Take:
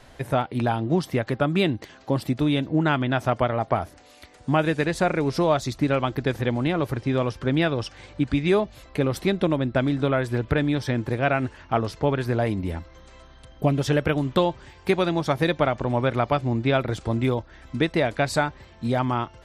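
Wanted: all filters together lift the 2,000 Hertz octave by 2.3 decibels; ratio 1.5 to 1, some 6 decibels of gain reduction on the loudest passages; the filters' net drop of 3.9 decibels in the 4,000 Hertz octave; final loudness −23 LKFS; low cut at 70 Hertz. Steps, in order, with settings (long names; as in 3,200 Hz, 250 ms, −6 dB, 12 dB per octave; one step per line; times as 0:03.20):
high-pass filter 70 Hz
parametric band 2,000 Hz +4.5 dB
parametric band 4,000 Hz −6.5 dB
downward compressor 1.5 to 1, threshold −33 dBFS
level +6.5 dB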